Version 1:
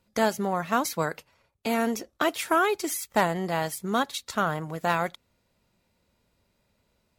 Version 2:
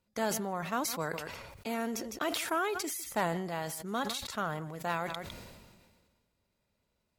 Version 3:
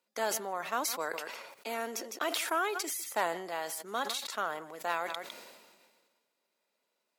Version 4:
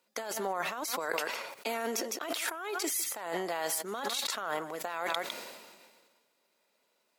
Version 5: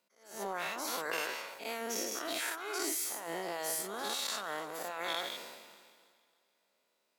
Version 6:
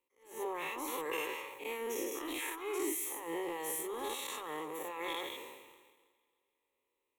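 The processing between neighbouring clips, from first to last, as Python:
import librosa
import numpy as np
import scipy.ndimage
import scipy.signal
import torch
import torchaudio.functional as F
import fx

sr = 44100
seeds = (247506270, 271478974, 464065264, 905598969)

y1 = x + 10.0 ** (-22.5 / 20.0) * np.pad(x, (int(156 * sr / 1000.0), 0))[:len(x)]
y1 = fx.sustainer(y1, sr, db_per_s=35.0)
y1 = y1 * 10.0 ** (-9.0 / 20.0)
y2 = scipy.signal.sosfilt(scipy.signal.bessel(4, 430.0, 'highpass', norm='mag', fs=sr, output='sos'), y1)
y2 = y2 * 10.0 ** (1.5 / 20.0)
y3 = fx.over_compress(y2, sr, threshold_db=-38.0, ratio=-1.0)
y3 = y3 * 10.0 ** (3.5 / 20.0)
y4 = fx.spec_dilate(y3, sr, span_ms=120)
y4 = fx.echo_thinned(y4, sr, ms=297, feedback_pct=42, hz=190.0, wet_db=-19.5)
y4 = fx.attack_slew(y4, sr, db_per_s=120.0)
y4 = y4 * 10.0 ** (-8.5 / 20.0)
y5 = fx.low_shelf(y4, sr, hz=350.0, db=11.0)
y5 = fx.leveller(y5, sr, passes=1)
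y5 = fx.fixed_phaser(y5, sr, hz=990.0, stages=8)
y5 = y5 * 10.0 ** (-3.5 / 20.0)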